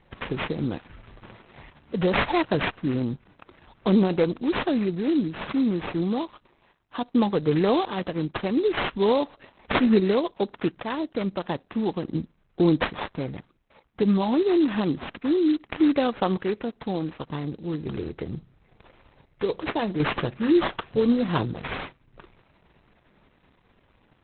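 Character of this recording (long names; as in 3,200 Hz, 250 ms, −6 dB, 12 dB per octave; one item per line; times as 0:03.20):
aliases and images of a low sample rate 4,500 Hz, jitter 20%
sample-and-hold tremolo 1.4 Hz
Opus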